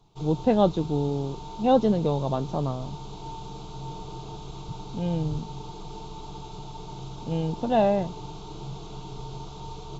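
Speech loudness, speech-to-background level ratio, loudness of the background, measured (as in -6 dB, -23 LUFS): -26.0 LUFS, 14.0 dB, -40.0 LUFS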